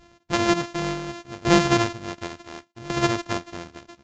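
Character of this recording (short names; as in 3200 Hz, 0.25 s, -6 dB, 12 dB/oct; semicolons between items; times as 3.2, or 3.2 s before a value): a buzz of ramps at a fixed pitch in blocks of 128 samples; tremolo saw down 0.69 Hz, depth 85%; Vorbis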